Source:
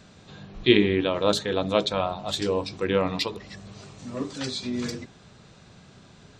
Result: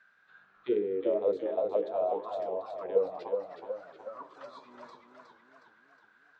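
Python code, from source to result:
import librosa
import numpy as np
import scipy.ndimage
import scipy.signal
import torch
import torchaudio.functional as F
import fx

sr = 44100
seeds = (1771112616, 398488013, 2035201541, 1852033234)

y = fx.auto_wah(x, sr, base_hz=460.0, top_hz=1600.0, q=11.0, full_db=-18.0, direction='down')
y = fx.echo_warbled(y, sr, ms=367, feedback_pct=53, rate_hz=2.8, cents=90, wet_db=-5.5)
y = y * librosa.db_to_amplitude(3.5)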